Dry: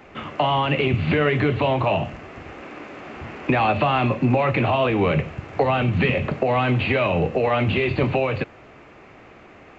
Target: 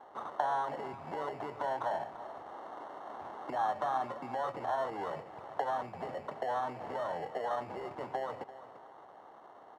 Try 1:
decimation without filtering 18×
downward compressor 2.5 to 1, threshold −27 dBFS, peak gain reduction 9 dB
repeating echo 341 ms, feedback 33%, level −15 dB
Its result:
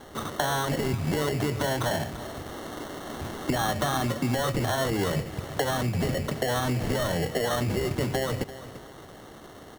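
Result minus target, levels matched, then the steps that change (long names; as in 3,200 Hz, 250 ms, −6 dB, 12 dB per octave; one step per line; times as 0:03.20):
1,000 Hz band −7.0 dB
add after downward compressor: resonant band-pass 860 Hz, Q 2.8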